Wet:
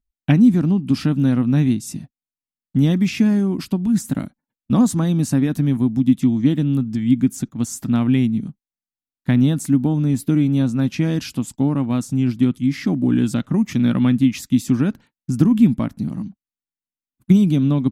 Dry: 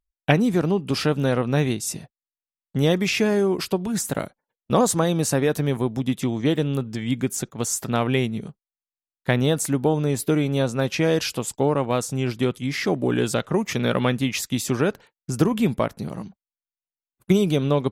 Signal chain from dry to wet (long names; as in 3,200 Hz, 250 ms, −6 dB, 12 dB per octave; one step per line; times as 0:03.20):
low shelf with overshoot 340 Hz +8.5 dB, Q 3
level −5 dB